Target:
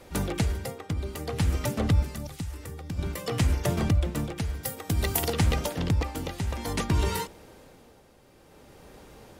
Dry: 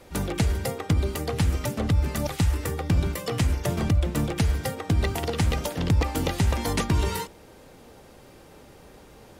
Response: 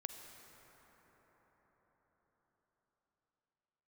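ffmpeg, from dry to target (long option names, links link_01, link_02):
-filter_complex "[0:a]tremolo=f=0.55:d=0.61,asettb=1/sr,asplit=3[link_01][link_02][link_03];[link_01]atrim=end=2.024[link_04];[link_02]atrim=start=2.02:end=2.99,asetpts=PTS-STARTPTS,afade=type=in:duration=0.004:curve=qsin,afade=type=out:start_time=0.966:duration=0.004:curve=qsin,acrossover=split=250|4100[link_05][link_06][link_07];[link_05]acompressor=threshold=-33dB:ratio=4[link_08];[link_06]acompressor=threshold=-44dB:ratio=4[link_09];[link_07]acompressor=threshold=-45dB:ratio=4[link_10];[link_08][link_09][link_10]amix=inputs=3:normalize=0[link_11];[link_03]atrim=start=2.986[link_12];[link_04][link_11]acrossfade=duration=0.004:curve1=hsin:curve2=qsin[link_13];[link_13][link_12]acrossfade=duration=0.004:curve1=qsin:curve2=hsin,asettb=1/sr,asplit=3[link_14][link_15][link_16];[link_14]atrim=end=4.634[link_17];[link_15]atrim=start=4.63:end=5.33,asetpts=PTS-STARTPTS,afade=type=in:duration=0.004:curve=qsin,afade=type=out:start_time=0.696:duration=0.004:curve=qsin,aemphasis=mode=production:type=50fm[link_18];[link_16]atrim=start=5.326[link_19];[link_17][link_18]acrossfade=duration=0.004:curve1=hsin:curve2=qsin[link_20];[link_20][link_19]acrossfade=duration=0.004:curve1=qsin:curve2=hsin"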